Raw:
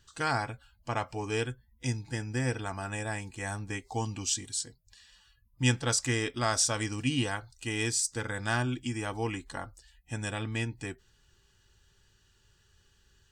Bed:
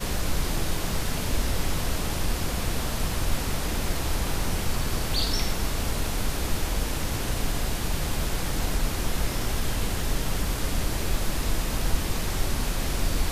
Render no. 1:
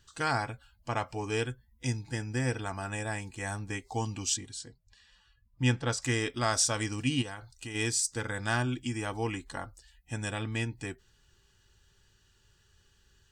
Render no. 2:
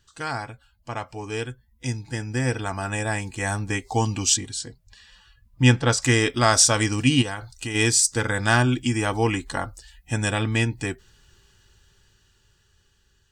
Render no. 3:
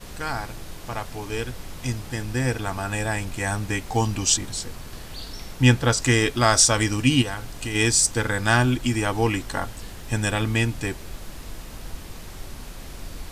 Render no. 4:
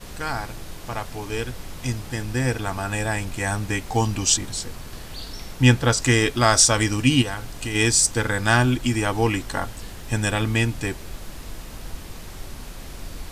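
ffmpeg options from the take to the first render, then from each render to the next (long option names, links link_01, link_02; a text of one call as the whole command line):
ffmpeg -i in.wav -filter_complex "[0:a]asettb=1/sr,asplit=3[link_01][link_02][link_03];[link_01]atrim=end=4.374[link_04];[link_02]atrim=start=4.37:end=6.02,asetpts=PTS-STARTPTS,afade=type=in:duration=0.004:curve=qsin,afade=type=out:start_time=1.646:duration=0.004:curve=qsin,lowpass=frequency=2700:poles=1[link_05];[link_03]atrim=start=6.016[link_06];[link_04][link_05]acrossfade=duration=0.004:curve1=hsin:curve2=qsin[link_07];[link_07][link_06]acrossfade=duration=0.004:curve1=qsin:curve2=hsin,asplit=3[link_08][link_09][link_10];[link_08]afade=type=out:start_time=7.21:duration=0.02[link_11];[link_09]acompressor=threshold=-36dB:ratio=6:attack=3.2:release=140:knee=1:detection=peak,afade=type=in:start_time=7.21:duration=0.02,afade=type=out:start_time=7.74:duration=0.02[link_12];[link_10]afade=type=in:start_time=7.74:duration=0.02[link_13];[link_11][link_12][link_13]amix=inputs=3:normalize=0" out.wav
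ffmpeg -i in.wav -af "dynaudnorm=framelen=570:gausssize=9:maxgain=11.5dB" out.wav
ffmpeg -i in.wav -i bed.wav -filter_complex "[1:a]volume=-11dB[link_01];[0:a][link_01]amix=inputs=2:normalize=0" out.wav
ffmpeg -i in.wav -af "volume=1dB" out.wav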